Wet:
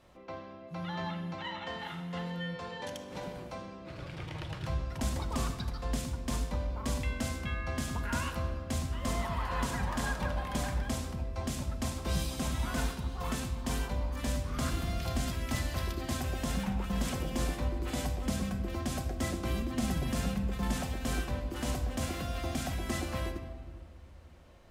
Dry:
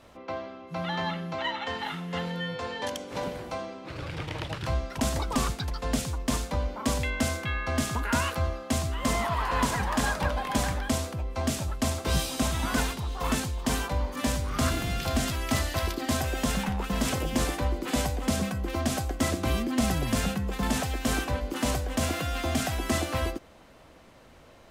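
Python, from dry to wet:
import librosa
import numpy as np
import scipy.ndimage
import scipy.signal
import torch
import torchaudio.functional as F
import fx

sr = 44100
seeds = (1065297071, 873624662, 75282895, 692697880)

y = fx.peak_eq(x, sr, hz=60.0, db=5.0, octaves=2.6)
y = fx.room_shoebox(y, sr, seeds[0], volume_m3=2300.0, walls='mixed', distance_m=0.95)
y = y * 10.0 ** (-8.5 / 20.0)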